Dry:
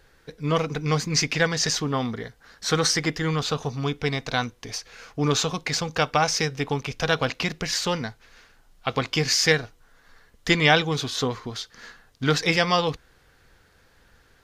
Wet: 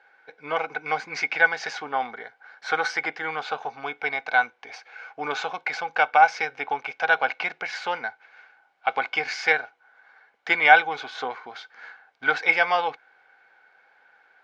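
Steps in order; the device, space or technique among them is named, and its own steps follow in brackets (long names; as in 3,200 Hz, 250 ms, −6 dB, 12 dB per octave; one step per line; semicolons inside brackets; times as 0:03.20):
tin-can telephone (band-pass filter 550–2,700 Hz; hollow resonant body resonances 800/1,500/2,200 Hz, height 14 dB, ringing for 25 ms)
level −3 dB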